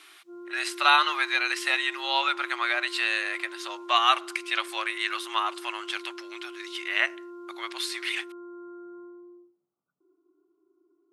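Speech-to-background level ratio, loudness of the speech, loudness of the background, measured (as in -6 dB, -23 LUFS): 17.0 dB, -26.0 LUFS, -43.0 LUFS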